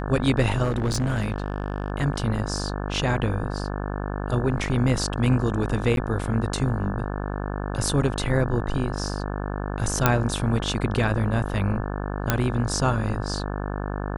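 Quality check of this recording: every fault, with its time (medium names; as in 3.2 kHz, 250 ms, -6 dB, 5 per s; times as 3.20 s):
buzz 50 Hz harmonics 35 -29 dBFS
0.63–1.90 s: clipped -19.5 dBFS
5.96–5.97 s: dropout
10.06 s: pop -2 dBFS
12.30 s: pop -4 dBFS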